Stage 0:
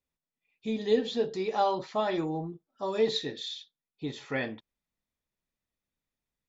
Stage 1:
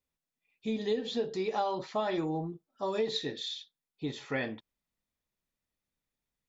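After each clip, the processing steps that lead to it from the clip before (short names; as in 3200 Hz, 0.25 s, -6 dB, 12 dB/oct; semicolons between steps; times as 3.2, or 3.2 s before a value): compressor 6:1, threshold -27 dBFS, peak gain reduction 8.5 dB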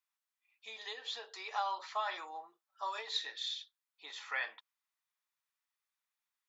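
ladder high-pass 870 Hz, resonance 35%; gain +6 dB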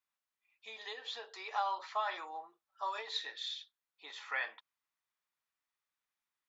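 high shelf 4100 Hz -7.5 dB; gain +1.5 dB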